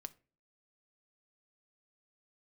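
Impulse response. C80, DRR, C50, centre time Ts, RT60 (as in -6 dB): 27.0 dB, 10.0 dB, 21.0 dB, 2 ms, not exponential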